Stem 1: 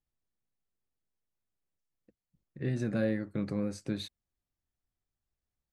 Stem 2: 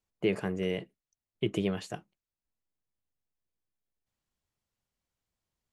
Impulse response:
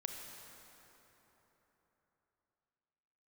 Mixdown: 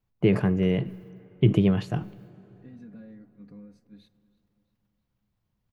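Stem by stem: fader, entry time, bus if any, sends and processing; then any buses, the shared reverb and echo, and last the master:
-20.0 dB, 0.00 s, send -15.5 dB, echo send -21 dB, comb 4.2 ms, depth 86%; compressor, threshold -30 dBFS, peak gain reduction 7 dB; attack slew limiter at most 430 dB/s
+1.0 dB, 0.00 s, send -14 dB, no echo send, low shelf 71 Hz +10.5 dB; sustainer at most 130 dB/s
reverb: on, RT60 3.9 s, pre-delay 28 ms
echo: feedback echo 0.328 s, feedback 50%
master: graphic EQ 125/250/1000/8000 Hz +12/+4/+3/-11 dB

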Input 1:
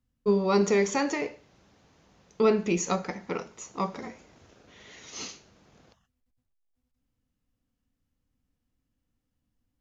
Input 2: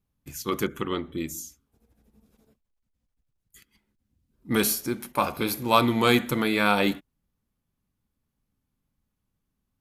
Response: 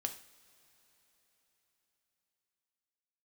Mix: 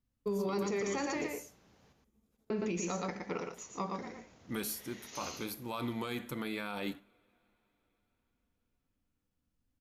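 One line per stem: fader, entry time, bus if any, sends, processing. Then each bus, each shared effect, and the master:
-5.5 dB, 0.00 s, muted 1.93–2.5, no send, echo send -5 dB, dry
-14.5 dB, 0.00 s, send -12.5 dB, no echo send, dry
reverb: on, pre-delay 3 ms
echo: echo 0.116 s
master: limiter -26.5 dBFS, peak gain reduction 9.5 dB

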